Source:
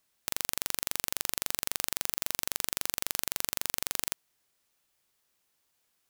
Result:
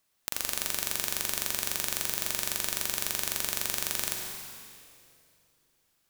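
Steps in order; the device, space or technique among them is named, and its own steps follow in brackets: stairwell (reverberation RT60 2.4 s, pre-delay 45 ms, DRR 1 dB)

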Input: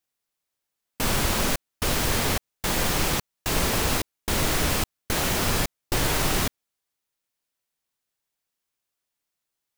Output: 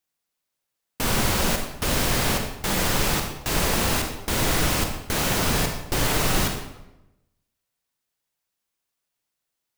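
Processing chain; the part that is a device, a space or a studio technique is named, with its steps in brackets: bathroom (reverberation RT60 0.90 s, pre-delay 35 ms, DRR 3.5 dB)

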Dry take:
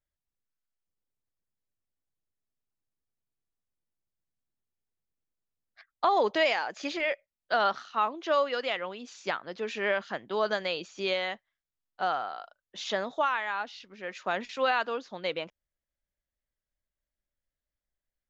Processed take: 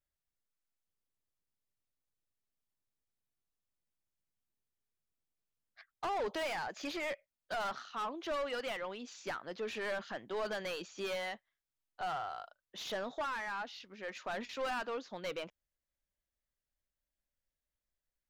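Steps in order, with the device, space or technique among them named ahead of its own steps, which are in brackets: saturation between pre-emphasis and de-emphasis (treble shelf 2.1 kHz +9.5 dB; saturation -29 dBFS, distortion -6 dB; treble shelf 2.1 kHz -9.5 dB); trim -2.5 dB

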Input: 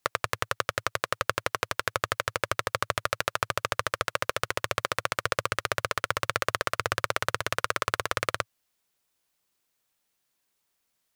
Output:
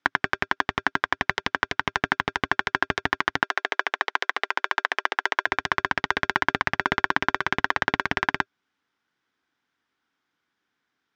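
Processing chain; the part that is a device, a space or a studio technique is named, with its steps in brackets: ring modulator pedal into a guitar cabinet (polarity switched at an audio rate 500 Hz; cabinet simulation 95–4500 Hz, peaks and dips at 110 Hz -3 dB, 280 Hz +7 dB, 590 Hz -9 dB, 1.5 kHz +7 dB, 2.7 kHz -5 dB, 4.3 kHz -8 dB); 3.43–5.47 s: high-pass 410 Hz 24 dB/octave; trim +4.5 dB

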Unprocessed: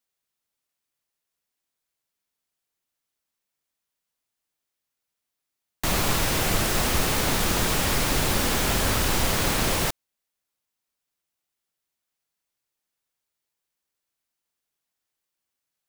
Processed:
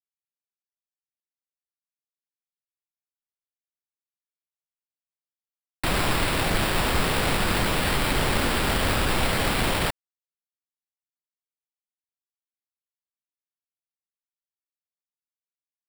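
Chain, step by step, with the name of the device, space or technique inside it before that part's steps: early 8-bit sampler (sample-rate reducer 6.3 kHz, jitter 0%; bit crusher 8-bit)

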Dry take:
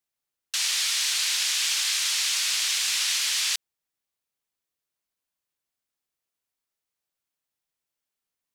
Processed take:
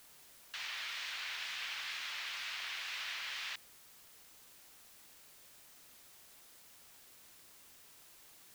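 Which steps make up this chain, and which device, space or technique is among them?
wax cylinder (band-pass 400–2100 Hz; wow and flutter; white noise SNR 13 dB); trim -6.5 dB

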